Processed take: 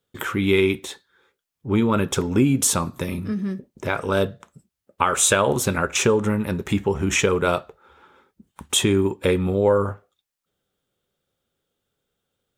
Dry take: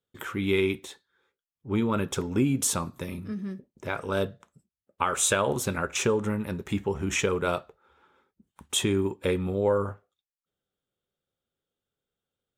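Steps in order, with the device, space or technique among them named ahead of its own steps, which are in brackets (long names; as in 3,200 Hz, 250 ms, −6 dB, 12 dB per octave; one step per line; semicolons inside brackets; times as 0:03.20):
parallel compression (in parallel at −2.5 dB: downward compressor, threshold −36 dBFS, peak gain reduction 16 dB)
on the sum: level +5 dB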